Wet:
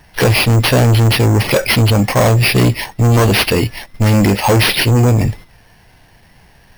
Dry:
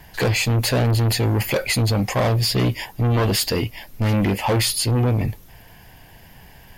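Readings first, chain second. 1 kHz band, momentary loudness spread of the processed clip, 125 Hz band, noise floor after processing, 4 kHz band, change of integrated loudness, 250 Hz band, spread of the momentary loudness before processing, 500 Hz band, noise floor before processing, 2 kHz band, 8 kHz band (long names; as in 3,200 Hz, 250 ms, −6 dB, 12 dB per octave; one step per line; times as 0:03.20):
+8.5 dB, 5 LU, +8.0 dB, −48 dBFS, +7.0 dB, +8.0 dB, +8.0 dB, 5 LU, +8.0 dB, −47 dBFS, +10.0 dB, +4.0 dB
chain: noise gate −37 dBFS, range −9 dB
tape wow and flutter 24 cents
bad sample-rate conversion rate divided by 6×, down none, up hold
level +8 dB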